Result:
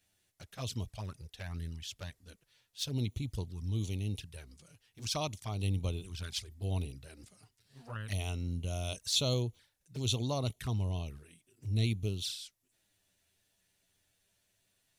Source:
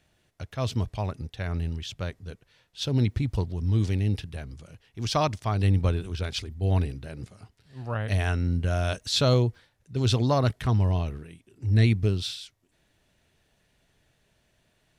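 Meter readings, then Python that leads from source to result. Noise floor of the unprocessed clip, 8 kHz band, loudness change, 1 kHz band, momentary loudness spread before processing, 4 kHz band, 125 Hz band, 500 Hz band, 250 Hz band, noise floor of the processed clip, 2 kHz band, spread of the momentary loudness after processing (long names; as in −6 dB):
−69 dBFS, −0.5 dB, −9.5 dB, −13.0 dB, 17 LU, −4.5 dB, −10.5 dB, −11.5 dB, −10.5 dB, −78 dBFS, −11.0 dB, 15 LU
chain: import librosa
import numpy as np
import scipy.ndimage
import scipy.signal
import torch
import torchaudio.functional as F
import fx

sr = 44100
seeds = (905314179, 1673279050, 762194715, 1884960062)

y = fx.env_flanger(x, sr, rest_ms=10.7, full_db=-23.0)
y = F.preemphasis(torch.from_numpy(y), 0.8).numpy()
y = y * librosa.db_to_amplitude(3.5)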